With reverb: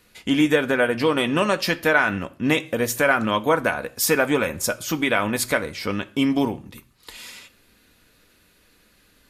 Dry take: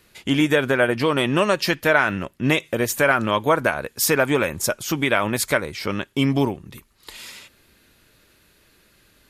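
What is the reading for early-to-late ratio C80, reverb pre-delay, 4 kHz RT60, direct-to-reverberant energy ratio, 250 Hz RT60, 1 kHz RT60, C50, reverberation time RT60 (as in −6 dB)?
24.5 dB, 4 ms, 0.40 s, 8.0 dB, 0.50 s, 0.45 s, 20.0 dB, 0.45 s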